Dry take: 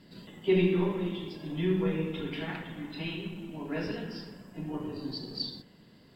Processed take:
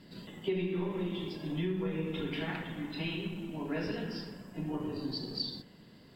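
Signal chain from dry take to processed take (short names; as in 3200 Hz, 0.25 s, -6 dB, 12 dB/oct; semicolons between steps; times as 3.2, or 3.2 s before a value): compressor 6:1, threshold -31 dBFS, peak gain reduction 11 dB; gain +1 dB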